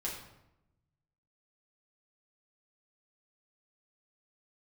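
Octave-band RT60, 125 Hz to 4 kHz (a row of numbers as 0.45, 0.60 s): 1.6, 1.2, 0.90, 0.85, 0.70, 0.60 s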